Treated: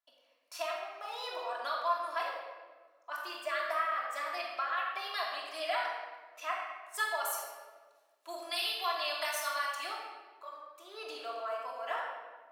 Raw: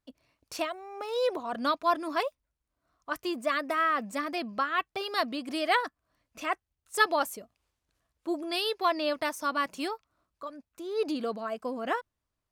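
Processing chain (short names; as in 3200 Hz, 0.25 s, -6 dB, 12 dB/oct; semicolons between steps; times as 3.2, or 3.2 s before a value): HPF 650 Hz 24 dB/oct; bell 7400 Hz -3 dB 0.65 oct; notch 4700 Hz, Q 29; 7.24–9.75 high shelf 2500 Hz +10.5 dB; compressor, threshold -28 dBFS, peak gain reduction 10 dB; shoebox room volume 1300 m³, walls mixed, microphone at 3 m; gain -6.5 dB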